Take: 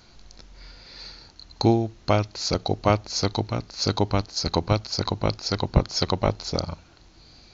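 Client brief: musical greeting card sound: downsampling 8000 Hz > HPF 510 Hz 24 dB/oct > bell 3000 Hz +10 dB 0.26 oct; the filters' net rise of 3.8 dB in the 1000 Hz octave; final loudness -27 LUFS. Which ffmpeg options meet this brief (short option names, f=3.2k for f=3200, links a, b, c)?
-af "equalizer=f=1k:t=o:g=5,aresample=8000,aresample=44100,highpass=f=510:w=0.5412,highpass=f=510:w=1.3066,equalizer=f=3k:t=o:w=0.26:g=10,volume=1dB"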